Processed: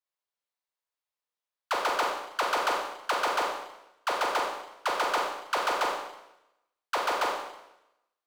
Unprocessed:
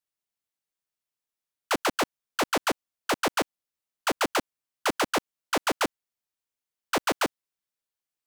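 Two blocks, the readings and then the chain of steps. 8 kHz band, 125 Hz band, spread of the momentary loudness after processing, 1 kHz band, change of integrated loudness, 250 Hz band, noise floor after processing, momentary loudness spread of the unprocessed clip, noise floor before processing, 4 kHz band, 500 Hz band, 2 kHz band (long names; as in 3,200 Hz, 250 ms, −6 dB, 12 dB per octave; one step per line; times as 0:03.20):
−6.0 dB, below −15 dB, 9 LU, +2.0 dB, −1.0 dB, −12.0 dB, below −85 dBFS, 5 LU, below −85 dBFS, −2.5 dB, −2.0 dB, −1.0 dB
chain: octave-band graphic EQ 125/250/500/1,000/2,000/4,000 Hz −6/−8/+9/+10/+4/+6 dB
speech leveller
brickwall limiter −10.5 dBFS, peak gain reduction 6.5 dB
four-comb reverb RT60 0.88 s, combs from 31 ms, DRR 0 dB
level −8.5 dB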